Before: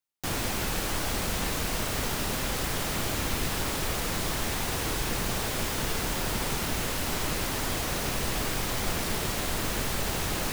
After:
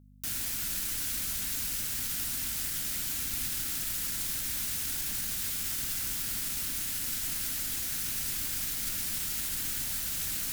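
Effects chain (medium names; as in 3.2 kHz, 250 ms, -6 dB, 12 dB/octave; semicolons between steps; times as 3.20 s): elliptic band-stop 300–1400 Hz; pre-emphasis filter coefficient 0.8; valve stage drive 28 dB, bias 0.65; mains buzz 50 Hz, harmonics 5, -61 dBFS; trim +4.5 dB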